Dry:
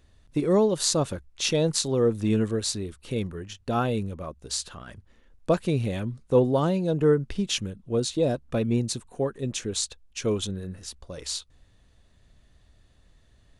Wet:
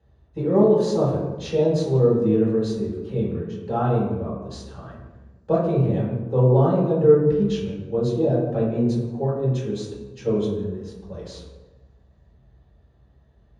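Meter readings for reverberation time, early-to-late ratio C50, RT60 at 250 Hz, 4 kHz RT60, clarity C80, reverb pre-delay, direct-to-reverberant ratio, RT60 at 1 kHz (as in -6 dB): 1.2 s, 1.5 dB, 1.5 s, 0.75 s, 4.0 dB, 3 ms, -11.0 dB, 1.1 s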